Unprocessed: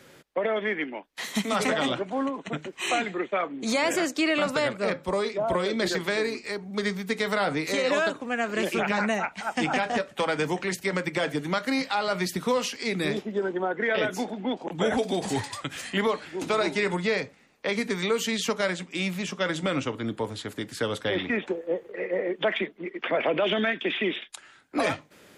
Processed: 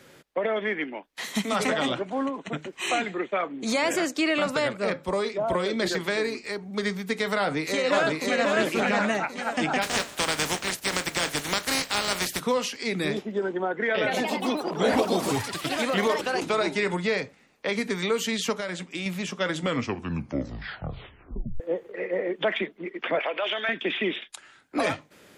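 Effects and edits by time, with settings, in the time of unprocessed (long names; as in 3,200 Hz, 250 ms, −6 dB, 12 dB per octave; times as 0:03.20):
0:07.38–0:08.46: delay throw 540 ms, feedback 45%, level −1.5 dB
0:09.81–0:12.39: compressing power law on the bin magnitudes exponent 0.37
0:13.88–0:16.67: delay with pitch and tempo change per echo 180 ms, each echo +3 semitones, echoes 3
0:18.56–0:19.06: downward compressor, threshold −27 dBFS
0:19.60: tape stop 2.00 s
0:23.19–0:23.69: high-pass filter 700 Hz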